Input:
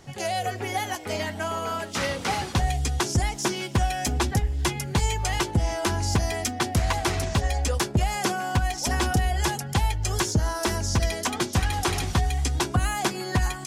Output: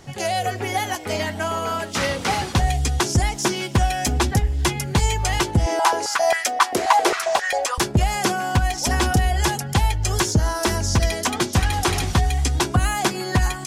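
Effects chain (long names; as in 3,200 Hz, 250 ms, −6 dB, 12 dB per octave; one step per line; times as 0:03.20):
0:05.66–0:07.78: high-pass on a step sequencer 7.5 Hz 380–1,600 Hz
level +4.5 dB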